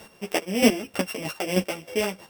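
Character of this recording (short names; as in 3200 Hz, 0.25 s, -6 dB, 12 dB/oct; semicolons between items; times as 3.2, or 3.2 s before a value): a buzz of ramps at a fixed pitch in blocks of 16 samples; chopped level 3.2 Hz, depth 65%, duty 20%; a shimmering, thickened sound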